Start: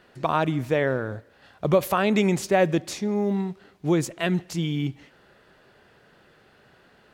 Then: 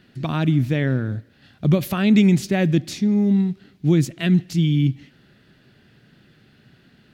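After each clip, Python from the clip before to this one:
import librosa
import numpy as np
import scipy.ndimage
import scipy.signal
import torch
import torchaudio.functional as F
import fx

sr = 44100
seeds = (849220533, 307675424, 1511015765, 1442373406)

y = fx.graphic_eq(x, sr, hz=(125, 250, 500, 1000, 4000, 8000), db=(8, 7, -8, -10, 3, -4))
y = y * librosa.db_to_amplitude(2.0)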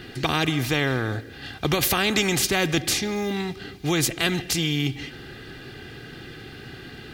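y = x + 0.6 * np.pad(x, (int(2.5 * sr / 1000.0), 0))[:len(x)]
y = fx.spectral_comp(y, sr, ratio=2.0)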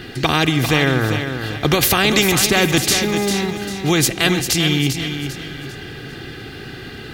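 y = fx.echo_feedback(x, sr, ms=397, feedback_pct=36, wet_db=-8.0)
y = y * librosa.db_to_amplitude(6.5)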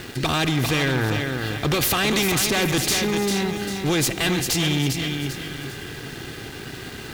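y = fx.tube_stage(x, sr, drive_db=17.0, bias=0.4)
y = np.where(np.abs(y) >= 10.0 ** (-35.5 / 20.0), y, 0.0)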